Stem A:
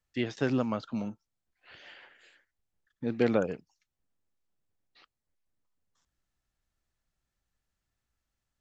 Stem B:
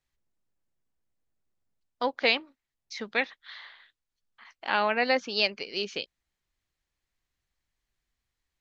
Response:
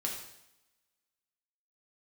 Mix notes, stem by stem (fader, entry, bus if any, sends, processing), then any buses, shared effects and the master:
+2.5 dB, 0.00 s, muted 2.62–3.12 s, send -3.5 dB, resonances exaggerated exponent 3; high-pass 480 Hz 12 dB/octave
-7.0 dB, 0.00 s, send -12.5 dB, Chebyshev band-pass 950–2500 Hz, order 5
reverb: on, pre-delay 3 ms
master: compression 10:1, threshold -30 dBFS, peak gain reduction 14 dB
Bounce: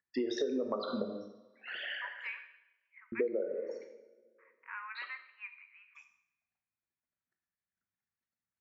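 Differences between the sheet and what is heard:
stem B -7.0 dB -> -18.0 dB; reverb return +8.5 dB

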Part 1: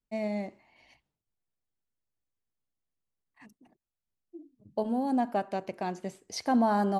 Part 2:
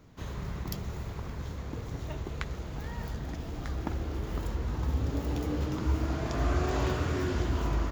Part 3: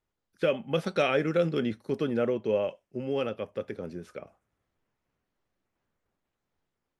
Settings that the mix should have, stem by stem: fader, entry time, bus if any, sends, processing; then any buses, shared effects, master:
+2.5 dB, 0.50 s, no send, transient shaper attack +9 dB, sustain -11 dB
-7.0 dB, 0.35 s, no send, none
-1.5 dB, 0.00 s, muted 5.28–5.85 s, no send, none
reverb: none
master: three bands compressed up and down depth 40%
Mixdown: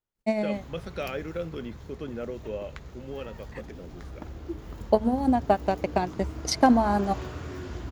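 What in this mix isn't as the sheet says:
stem 1: entry 0.50 s -> 0.15 s; stem 3 -1.5 dB -> -8.0 dB; master: missing three bands compressed up and down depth 40%

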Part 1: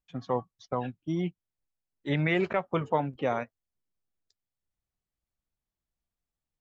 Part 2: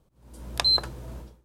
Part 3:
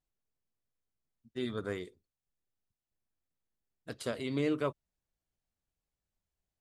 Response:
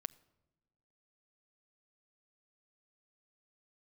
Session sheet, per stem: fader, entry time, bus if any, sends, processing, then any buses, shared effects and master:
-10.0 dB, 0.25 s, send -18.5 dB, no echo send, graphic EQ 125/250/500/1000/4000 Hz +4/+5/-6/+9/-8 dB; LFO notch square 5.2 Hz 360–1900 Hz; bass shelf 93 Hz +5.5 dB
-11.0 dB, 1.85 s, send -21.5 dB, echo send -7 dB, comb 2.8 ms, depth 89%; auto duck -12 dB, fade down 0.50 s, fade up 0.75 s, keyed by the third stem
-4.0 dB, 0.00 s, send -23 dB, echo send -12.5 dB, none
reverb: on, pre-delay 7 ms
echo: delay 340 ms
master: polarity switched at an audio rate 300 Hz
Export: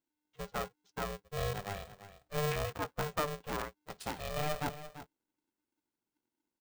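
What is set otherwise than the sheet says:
stem 1: send off; stem 2: muted

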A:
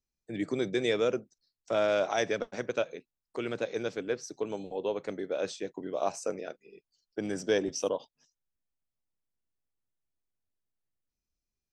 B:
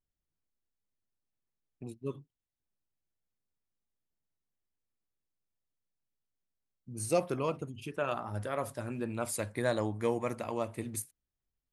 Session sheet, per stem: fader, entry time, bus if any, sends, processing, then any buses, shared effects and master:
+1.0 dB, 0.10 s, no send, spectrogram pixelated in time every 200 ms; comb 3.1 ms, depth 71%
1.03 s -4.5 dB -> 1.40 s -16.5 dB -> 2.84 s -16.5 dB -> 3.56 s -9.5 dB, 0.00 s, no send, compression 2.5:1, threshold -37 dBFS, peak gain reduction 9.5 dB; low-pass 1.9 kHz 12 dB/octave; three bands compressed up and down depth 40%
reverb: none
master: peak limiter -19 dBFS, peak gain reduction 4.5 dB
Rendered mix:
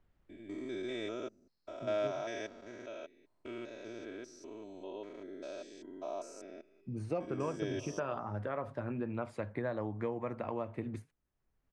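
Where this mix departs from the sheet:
stem A +1.0 dB -> -9.5 dB; stem B -4.5 dB -> +7.0 dB

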